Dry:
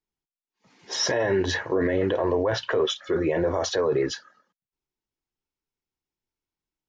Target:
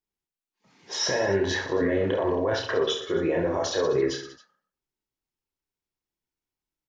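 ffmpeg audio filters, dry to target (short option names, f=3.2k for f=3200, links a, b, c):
-af "aecho=1:1:30|69|119.7|185.6|271.3:0.631|0.398|0.251|0.158|0.1,volume=-3dB"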